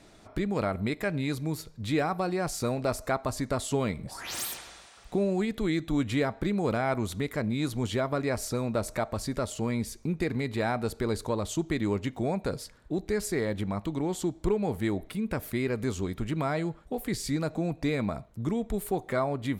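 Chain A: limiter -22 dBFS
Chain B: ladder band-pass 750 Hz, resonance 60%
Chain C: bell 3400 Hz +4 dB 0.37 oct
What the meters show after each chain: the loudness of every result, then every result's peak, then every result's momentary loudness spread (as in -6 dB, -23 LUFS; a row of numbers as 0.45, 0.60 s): -33.0, -42.5, -30.5 LUFS; -22.0, -23.0, -15.0 dBFS; 3, 16, 5 LU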